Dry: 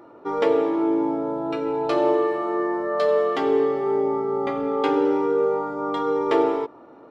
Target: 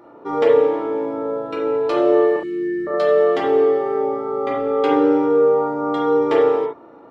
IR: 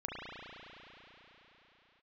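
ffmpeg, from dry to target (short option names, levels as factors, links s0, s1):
-filter_complex "[0:a]asettb=1/sr,asplit=3[s0][s1][s2];[s0]atrim=end=2.364[s3];[s1]atrim=start=2.36:end=2.87,asetpts=PTS-STARTPTS,afade=t=in:d=0.004:c=qsin,afade=t=out:st=0.506:d=0.004:c=qsin,asuperstop=centerf=810:order=8:qfactor=0.51[s4];[s2]atrim=start=2.866[s5];[s3][s4]acrossfade=d=0.004:c1=hsin:c2=qsin[s6];[s6][s5]acrossfade=d=0.004:c1=qsin:c2=hsin[s7];[1:a]atrim=start_sample=2205,atrim=end_sample=3528[s8];[s7][s8]afir=irnorm=-1:irlink=0,volume=1.58"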